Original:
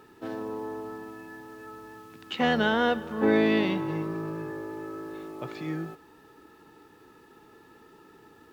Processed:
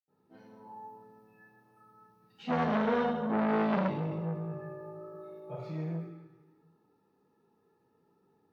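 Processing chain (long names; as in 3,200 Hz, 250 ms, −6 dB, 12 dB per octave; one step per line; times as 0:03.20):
noise reduction from a noise print of the clip's start 15 dB
convolution reverb RT60 1.0 s, pre-delay 76 ms
saturating transformer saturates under 980 Hz
level +2 dB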